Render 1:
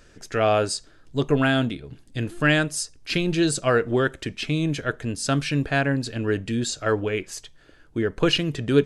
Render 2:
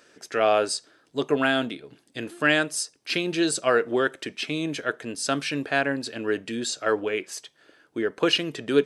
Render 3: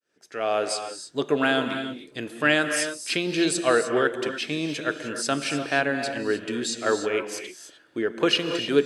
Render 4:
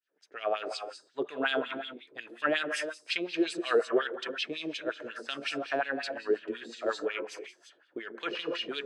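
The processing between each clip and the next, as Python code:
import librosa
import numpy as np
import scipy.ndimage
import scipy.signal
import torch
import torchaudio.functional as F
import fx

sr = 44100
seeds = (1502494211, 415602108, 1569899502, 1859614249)

y1 = scipy.signal.sosfilt(scipy.signal.butter(2, 300.0, 'highpass', fs=sr, output='sos'), x)
y1 = fx.notch(y1, sr, hz=6900.0, q=17.0)
y2 = fx.fade_in_head(y1, sr, length_s=0.86)
y2 = fx.rev_gated(y2, sr, seeds[0], gate_ms=330, shape='rising', drr_db=6.5)
y3 = fx.wah_lfo(y2, sr, hz=5.5, low_hz=390.0, high_hz=3800.0, q=2.2)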